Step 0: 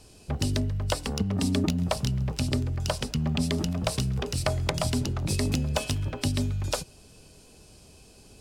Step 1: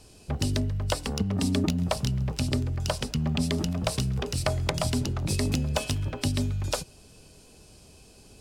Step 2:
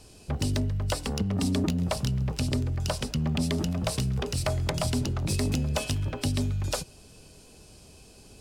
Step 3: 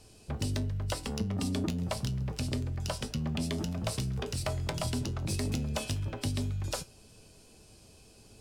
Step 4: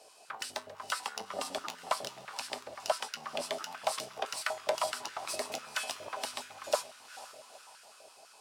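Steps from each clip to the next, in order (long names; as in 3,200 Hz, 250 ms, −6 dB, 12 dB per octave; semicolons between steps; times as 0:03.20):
no processing that can be heard
soft clipping −19.5 dBFS, distortion −18 dB; level +1 dB
tuned comb filter 110 Hz, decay 0.2 s, harmonics all, mix 60%
feedback delay with all-pass diffusion 469 ms, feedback 52%, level −13 dB; high-pass on a step sequencer 12 Hz 610–1,500 Hz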